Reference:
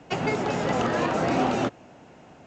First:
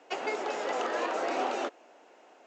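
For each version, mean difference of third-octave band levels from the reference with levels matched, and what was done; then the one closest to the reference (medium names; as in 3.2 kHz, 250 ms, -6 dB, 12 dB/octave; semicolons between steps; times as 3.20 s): 6.0 dB: high-pass 360 Hz 24 dB/octave; trim -5 dB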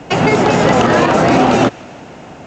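1.0 dB: on a send: feedback echo behind a high-pass 159 ms, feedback 66%, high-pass 1.5 kHz, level -24 dB; on the sum: loudness maximiser +16.5 dB; trim -1 dB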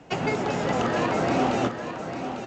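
4.5 dB: delay 849 ms -8.5 dB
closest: second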